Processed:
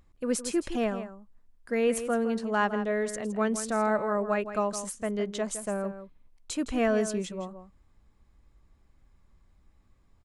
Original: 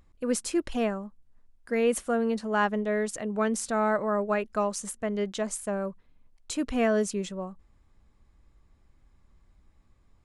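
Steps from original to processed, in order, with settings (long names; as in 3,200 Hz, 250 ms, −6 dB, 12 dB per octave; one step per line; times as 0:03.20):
slap from a distant wall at 28 metres, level −11 dB
level −1 dB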